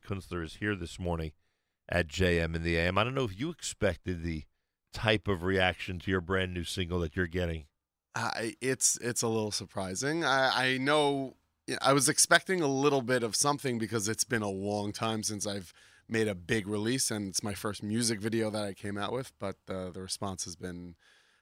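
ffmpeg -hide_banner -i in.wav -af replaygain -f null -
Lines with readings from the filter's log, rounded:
track_gain = +10.8 dB
track_peak = 0.219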